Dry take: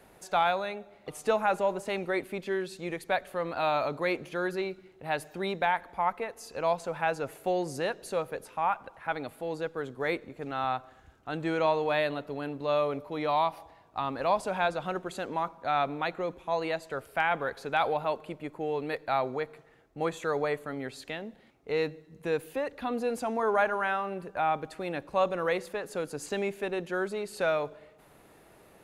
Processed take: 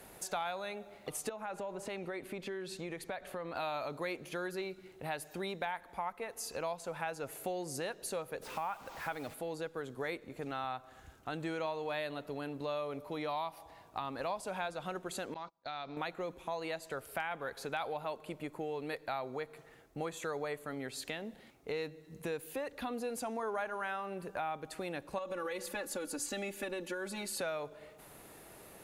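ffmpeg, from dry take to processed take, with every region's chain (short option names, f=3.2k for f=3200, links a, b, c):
-filter_complex "[0:a]asettb=1/sr,asplit=3[a][b][c];[a]atrim=end=1.294[d];[b]atrim=start=1.29:end=3.55,asetpts=PTS-STARTPTS,afade=t=in:d=0.004:c=qsin,afade=t=out:st=2.256:d=0.004:c=qsin,lowpass=f=3.6k:p=1,acompressor=threshold=-37dB:ratio=2.5:attack=3.2:release=140:knee=1:detection=peak[e];[c]atrim=start=3.546[f];[d][e]acrossfade=d=0.004:c1=hsin:c2=qsin[g];[g][f]acrossfade=d=0.004:c1=qsin:c2=hsin,asettb=1/sr,asplit=3[h][i][j];[h]atrim=end=8.424[k];[i]atrim=start=8.42:end=9.34,asetpts=PTS-STARTPTS,afade=t=in:d=0.004:c=qsin,afade=t=out:st=0.916:d=0.004:c=qsin,aeval=exprs='val(0)+0.5*0.00631*sgn(val(0))':c=same,lowpass=4k,acrusher=bits=8:mix=0:aa=0.5[l];[j]atrim=start=9.336[m];[k][l]acrossfade=d=0.004:c1=hsin:c2=qsin[n];[n][m]acrossfade=d=0.004:c1=qsin:c2=hsin,asettb=1/sr,asplit=3[o][p][q];[o]atrim=end=15.344[r];[p]atrim=start=15.34:end=15.97,asetpts=PTS-STARTPTS,afade=t=in:d=0.004:c=qsin,afade=t=out:st=0.626:d=0.004:c=qsin,agate=range=-32dB:threshold=-38dB:ratio=16:release=100:detection=peak,acompressor=threshold=-49dB:ratio=2:attack=3.2:release=140:knee=1:detection=peak,lowpass=f=4.7k:t=q:w=4.4[s];[q]atrim=start=15.966[t];[r][s]acrossfade=d=0.004:c1=hsin:c2=qsin[u];[u][t]acrossfade=d=0.004:c1=qsin:c2=hsin,asettb=1/sr,asplit=3[v][w][x];[v]atrim=end=25.184[y];[w]atrim=start=25.18:end=27.41,asetpts=PTS-STARTPTS,afade=t=in:d=0.004:c=qsin,afade=t=out:st=2.226:d=0.004:c=qsin,bandreject=f=650:w=8.2,aecho=1:1:3.5:0.99,atrim=end_sample=98343,acompressor=threshold=-27dB:ratio=12:attack=3.2:release=140:knee=1:detection=peak[z];[x]atrim=start=27.406[aa];[y][z]acrossfade=d=0.004:c1=hsin:c2=qsin[ab];[ab][aa]acrossfade=d=0.004:c1=qsin:c2=hsin,aemphasis=mode=production:type=cd,acompressor=threshold=-40dB:ratio=3,volume=1.5dB"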